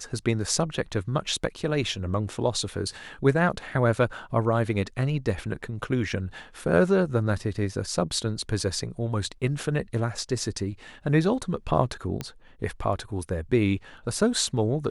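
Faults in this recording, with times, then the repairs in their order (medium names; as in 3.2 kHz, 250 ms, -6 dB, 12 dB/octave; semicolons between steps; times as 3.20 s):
12.21 s: pop -17 dBFS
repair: de-click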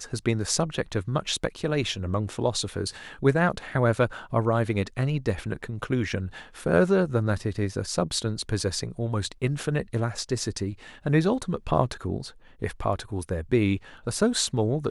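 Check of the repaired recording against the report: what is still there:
12.21 s: pop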